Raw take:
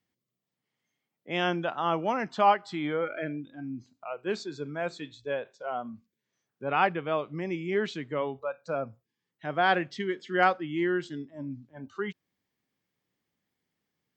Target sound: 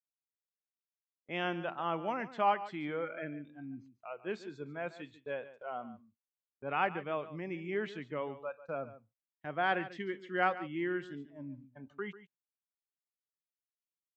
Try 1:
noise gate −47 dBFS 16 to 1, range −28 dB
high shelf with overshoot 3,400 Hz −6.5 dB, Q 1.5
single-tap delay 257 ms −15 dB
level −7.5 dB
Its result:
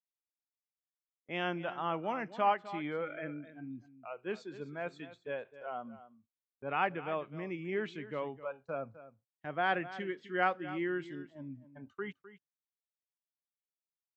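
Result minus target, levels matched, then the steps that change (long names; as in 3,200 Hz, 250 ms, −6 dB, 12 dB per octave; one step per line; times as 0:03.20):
echo 114 ms late
change: single-tap delay 143 ms −15 dB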